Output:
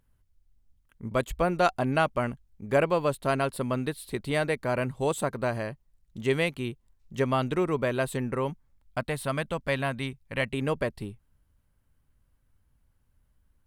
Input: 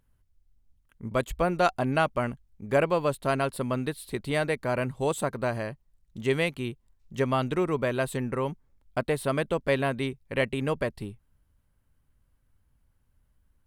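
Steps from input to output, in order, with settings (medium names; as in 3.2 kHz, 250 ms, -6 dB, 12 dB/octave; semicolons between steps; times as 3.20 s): 8.50–10.54 s: peaking EQ 390 Hz -8.5 dB 0.94 oct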